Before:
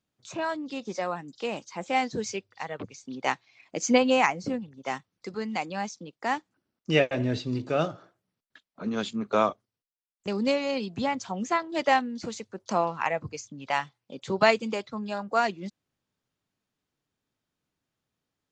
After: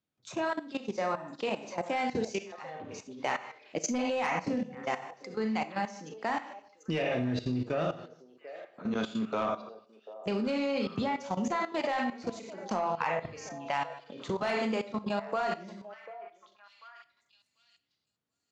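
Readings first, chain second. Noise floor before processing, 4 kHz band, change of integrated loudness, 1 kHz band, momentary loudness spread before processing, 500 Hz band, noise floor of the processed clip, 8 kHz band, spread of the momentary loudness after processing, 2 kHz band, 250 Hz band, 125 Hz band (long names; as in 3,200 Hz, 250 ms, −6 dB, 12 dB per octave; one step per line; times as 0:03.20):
below −85 dBFS, −6.5 dB, −5.0 dB, −4.5 dB, 14 LU, −4.5 dB, −80 dBFS, −5.0 dB, 15 LU, −5.5 dB, −3.0 dB, −3.5 dB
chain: high-pass filter 62 Hz
high-shelf EQ 7,400 Hz −10 dB
four-comb reverb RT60 0.51 s, combs from 25 ms, DRR 3.5 dB
in parallel at −2.5 dB: downward compressor 10 to 1, threshold −37 dBFS, peak gain reduction 23.5 dB
on the sum: soft clipping −13.5 dBFS, distortion −17 dB
output level in coarse steps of 15 dB
on a send: echo through a band-pass that steps 742 ms, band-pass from 580 Hz, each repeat 1.4 octaves, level −12 dB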